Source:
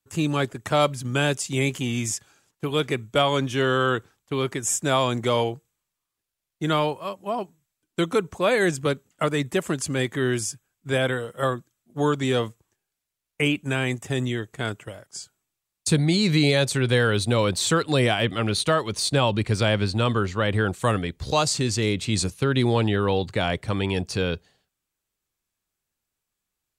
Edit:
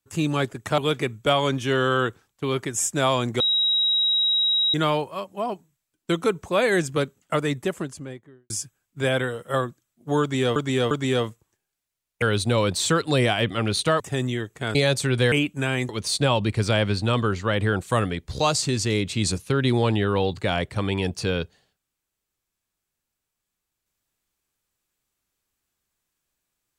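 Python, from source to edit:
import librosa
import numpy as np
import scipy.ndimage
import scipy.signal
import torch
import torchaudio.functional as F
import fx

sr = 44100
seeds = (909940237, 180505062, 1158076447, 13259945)

y = fx.studio_fade_out(x, sr, start_s=9.25, length_s=1.14)
y = fx.edit(y, sr, fx.cut(start_s=0.78, length_s=1.89),
    fx.bleep(start_s=5.29, length_s=1.34, hz=3830.0, db=-18.0),
    fx.repeat(start_s=12.1, length_s=0.35, count=3),
    fx.swap(start_s=13.41, length_s=0.57, other_s=17.03, other_length_s=1.78),
    fx.cut(start_s=14.73, length_s=1.73), tone=tone)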